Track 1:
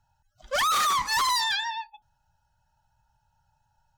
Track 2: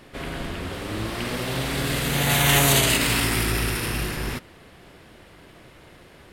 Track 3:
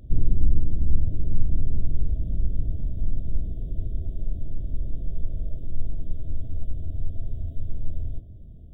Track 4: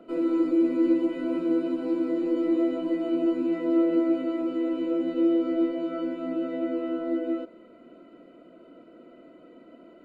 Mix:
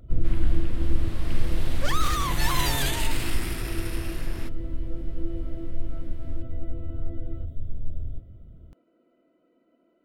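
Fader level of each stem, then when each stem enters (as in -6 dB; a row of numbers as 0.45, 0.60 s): -6.0, -11.5, -2.5, -16.0 dB; 1.30, 0.10, 0.00, 0.00 s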